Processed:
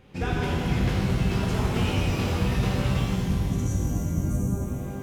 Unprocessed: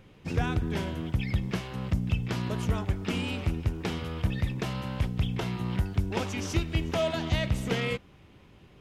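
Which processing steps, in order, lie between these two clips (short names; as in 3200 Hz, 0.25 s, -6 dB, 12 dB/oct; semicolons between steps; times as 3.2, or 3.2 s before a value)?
time stretch by phase-locked vocoder 0.57×; spectral delete 3.06–4.61, 320–5600 Hz; shimmer reverb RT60 2.6 s, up +12 st, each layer -8 dB, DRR -5.5 dB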